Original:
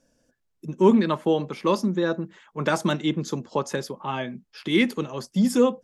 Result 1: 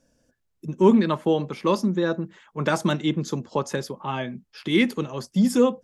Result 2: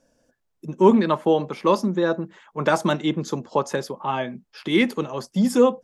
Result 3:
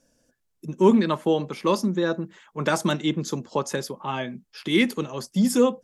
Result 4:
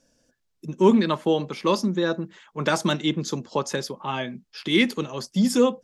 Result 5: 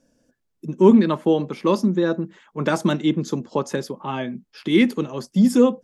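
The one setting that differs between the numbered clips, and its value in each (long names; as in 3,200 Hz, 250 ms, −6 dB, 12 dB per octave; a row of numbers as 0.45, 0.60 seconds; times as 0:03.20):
parametric band, centre frequency: 75, 770, 12,000, 4,700, 260 Hertz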